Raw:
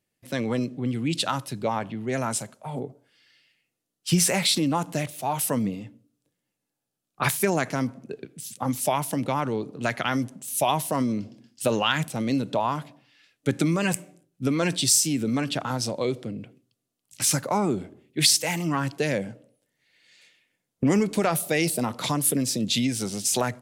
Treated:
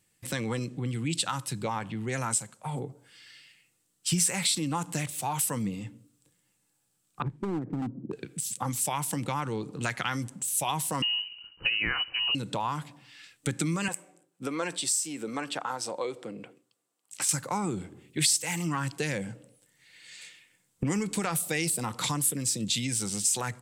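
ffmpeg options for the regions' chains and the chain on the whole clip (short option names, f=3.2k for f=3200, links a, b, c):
-filter_complex "[0:a]asettb=1/sr,asplit=3[a][b][c];[a]atrim=end=7.224[d];[b]atrim=start=7.22:end=8.13,asetpts=PTS-STARTPTS,afade=t=in:d=0.004:c=qsin,afade=t=out:st=0.906:d=0.004:c=qsin,acompressor=threshold=-28dB:ratio=1.5:attack=3.2:release=140:knee=1:detection=peak,lowpass=f=320:t=q:w=2.8,asoftclip=type=hard:threshold=-22.5dB[e];[c]atrim=start=8.126[f];[d][e]acrossfade=d=0.004:c1=hsin:c2=qsin[g];[g][f]acrossfade=d=0.004:c1=qsin:c2=hsin,asettb=1/sr,asplit=3[h][i][j];[h]atrim=end=11.024[k];[i]atrim=start=11.02:end=12.35,asetpts=PTS-STARTPTS,afade=t=in:d=0.004:c=qsin,afade=t=out:st=1.326:d=0.004:c=qsin,deesser=0.3,lowpass=f=2.6k:t=q:w=0.5098,lowpass=f=2.6k:t=q:w=0.6013,lowpass=f=2.6k:t=q:w=0.9,lowpass=f=2.6k:t=q:w=2.563,afreqshift=-3100,lowshelf=f=350:g=9.5[l];[j]atrim=start=12.346[m];[k][l]acrossfade=d=0.004:c1=hsin:c2=qsin[n];[n][m]acrossfade=d=0.004:c1=qsin:c2=hsin,asettb=1/sr,asplit=3[o][p][q];[o]atrim=end=13.884[r];[p]atrim=start=13.88:end=17.29,asetpts=PTS-STARTPTS,afade=t=in:d=0.004:c=qsin,afade=t=out:st=3.406:d=0.004:c=qsin,highpass=660,tiltshelf=f=1.2k:g=9.5[s];[q]atrim=start=17.286[t];[r][s]acrossfade=d=0.004:c1=hsin:c2=qsin[u];[u][t]acrossfade=d=0.004:c1=qsin:c2=hsin,equalizer=f=250:t=o:w=0.33:g=-8,equalizer=f=400:t=o:w=0.33:g=-6,equalizer=f=630:t=o:w=0.33:g=-12,equalizer=f=8k:t=o:w=0.33:g=10,acompressor=threshold=-45dB:ratio=2,volume=8.5dB"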